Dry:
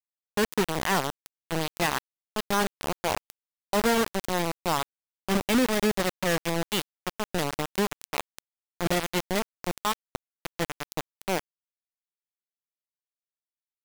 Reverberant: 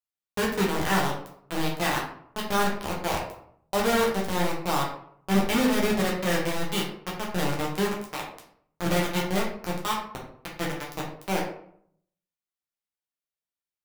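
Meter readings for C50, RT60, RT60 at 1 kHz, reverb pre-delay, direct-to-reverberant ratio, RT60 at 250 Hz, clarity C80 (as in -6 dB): 5.0 dB, 0.65 s, 0.65 s, 7 ms, -3.0 dB, 0.75 s, 9.0 dB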